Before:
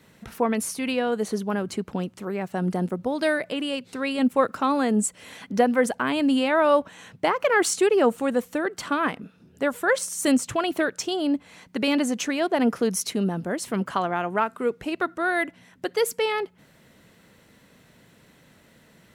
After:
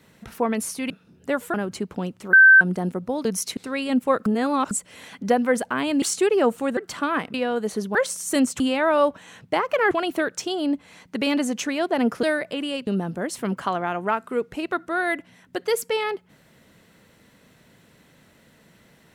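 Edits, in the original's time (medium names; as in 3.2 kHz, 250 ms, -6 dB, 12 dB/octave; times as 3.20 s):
0.90–1.51 s: swap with 9.23–9.87 s
2.30–2.58 s: bleep 1.55 kHz -7.5 dBFS
3.22–3.86 s: swap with 12.84–13.16 s
4.55–5.00 s: reverse
6.31–7.62 s: move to 10.52 s
8.37–8.66 s: delete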